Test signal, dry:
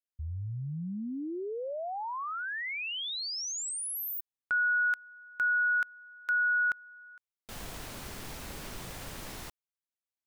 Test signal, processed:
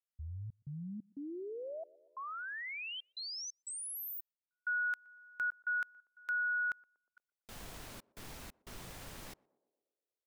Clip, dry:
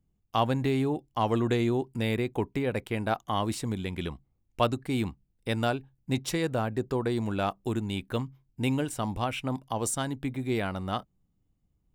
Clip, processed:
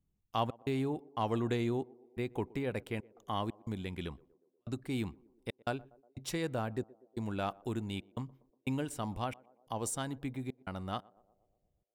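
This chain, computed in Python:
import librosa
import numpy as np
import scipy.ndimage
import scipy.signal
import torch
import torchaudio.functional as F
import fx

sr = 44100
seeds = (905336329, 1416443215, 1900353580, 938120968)

y = fx.step_gate(x, sr, bpm=90, pattern='xxx.xx.xxxx..xx', floor_db=-60.0, edge_ms=4.5)
y = fx.echo_banded(y, sr, ms=120, feedback_pct=66, hz=460.0, wet_db=-22.0)
y = y * 10.0 ** (-6.5 / 20.0)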